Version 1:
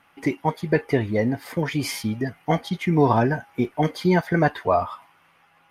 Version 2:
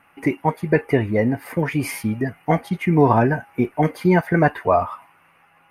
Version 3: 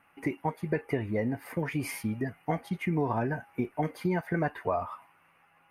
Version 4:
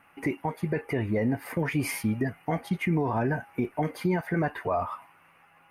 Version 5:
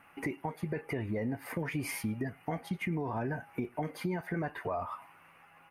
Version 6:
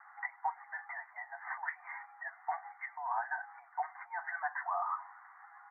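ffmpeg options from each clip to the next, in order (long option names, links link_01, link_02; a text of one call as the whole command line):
ffmpeg -i in.wav -af "superequalizer=13b=0.282:14b=0.316:15b=0.398,volume=3dB" out.wav
ffmpeg -i in.wav -af "acompressor=threshold=-18dB:ratio=3,volume=-8dB" out.wav
ffmpeg -i in.wav -af "alimiter=limit=-22.5dB:level=0:latency=1:release=23,volume=5dB" out.wav
ffmpeg -i in.wav -filter_complex "[0:a]acompressor=threshold=-37dB:ratio=2,asplit=2[link_01][link_02];[link_02]adelay=105,volume=-29dB,highshelf=frequency=4000:gain=-2.36[link_03];[link_01][link_03]amix=inputs=2:normalize=0" out.wav
ffmpeg -i in.wav -af "asuperpass=centerf=1200:order=20:qfactor=0.95,volume=5dB" out.wav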